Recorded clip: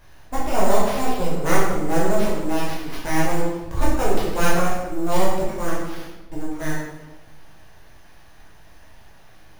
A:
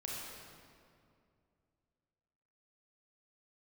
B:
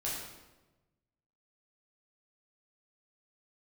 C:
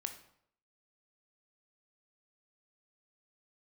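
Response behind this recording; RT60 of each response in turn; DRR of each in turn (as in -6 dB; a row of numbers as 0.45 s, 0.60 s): B; 2.4 s, 1.1 s, 0.70 s; -4.5 dB, -7.0 dB, 6.0 dB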